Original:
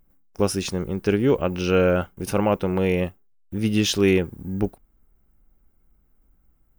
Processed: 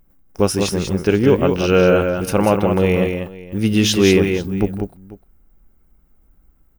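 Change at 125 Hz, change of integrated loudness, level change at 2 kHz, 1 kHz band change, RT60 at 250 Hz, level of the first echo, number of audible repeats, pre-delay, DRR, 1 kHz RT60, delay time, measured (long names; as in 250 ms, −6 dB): +6.0 dB, +6.0 dB, +6.0 dB, +6.0 dB, no reverb audible, −14.0 dB, 3, no reverb audible, no reverb audible, no reverb audible, 161 ms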